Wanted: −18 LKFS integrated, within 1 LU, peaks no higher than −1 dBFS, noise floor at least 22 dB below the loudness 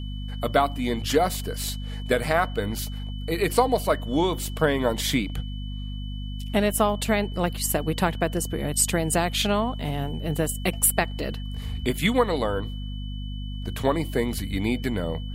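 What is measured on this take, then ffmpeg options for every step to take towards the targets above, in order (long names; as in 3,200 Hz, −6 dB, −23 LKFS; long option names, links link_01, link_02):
mains hum 50 Hz; hum harmonics up to 250 Hz; level of the hum −30 dBFS; interfering tone 3,000 Hz; level of the tone −44 dBFS; integrated loudness −25.5 LKFS; sample peak −4.0 dBFS; target loudness −18.0 LKFS
→ -af "bandreject=frequency=50:width_type=h:width=4,bandreject=frequency=100:width_type=h:width=4,bandreject=frequency=150:width_type=h:width=4,bandreject=frequency=200:width_type=h:width=4,bandreject=frequency=250:width_type=h:width=4"
-af "bandreject=frequency=3000:width=30"
-af "volume=7.5dB,alimiter=limit=-1dB:level=0:latency=1"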